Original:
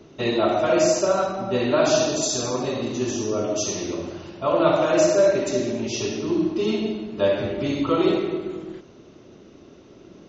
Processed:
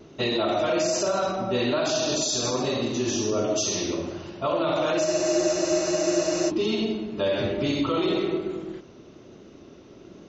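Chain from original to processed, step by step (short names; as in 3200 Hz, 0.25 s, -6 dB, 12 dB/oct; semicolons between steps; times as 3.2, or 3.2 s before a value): dynamic EQ 4000 Hz, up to +6 dB, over -42 dBFS, Q 1.1; limiter -16 dBFS, peak gain reduction 10.5 dB; vibrato 1.2 Hz 19 cents; spectral freeze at 5.08, 1.40 s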